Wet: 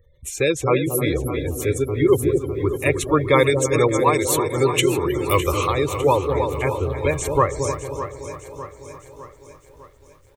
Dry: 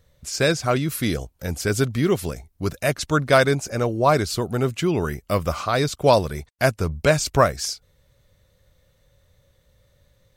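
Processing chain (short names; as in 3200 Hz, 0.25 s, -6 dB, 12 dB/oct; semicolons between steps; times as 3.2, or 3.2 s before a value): 3.47–5.7 high shelf 2000 Hz +11 dB; feedback echo 0.312 s, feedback 57%, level -11 dB; random-step tremolo; dark delay 0.228 s, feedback 33%, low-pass 550 Hz, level -4 dB; spectral gate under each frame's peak -25 dB strong; high shelf 7600 Hz +5 dB; fixed phaser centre 1000 Hz, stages 8; lo-fi delay 0.605 s, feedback 55%, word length 10-bit, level -12.5 dB; gain +6.5 dB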